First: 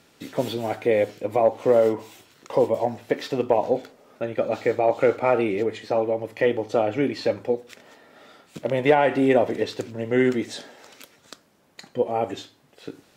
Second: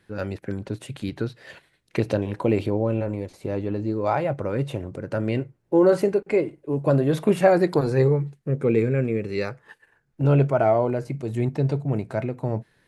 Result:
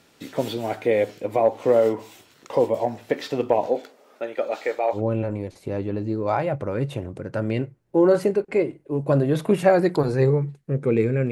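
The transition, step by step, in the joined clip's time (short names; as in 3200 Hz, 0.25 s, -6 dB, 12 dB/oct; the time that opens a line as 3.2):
first
3.66–5.02 HPF 240 Hz -> 640 Hz
4.97 switch to second from 2.75 s, crossfade 0.10 s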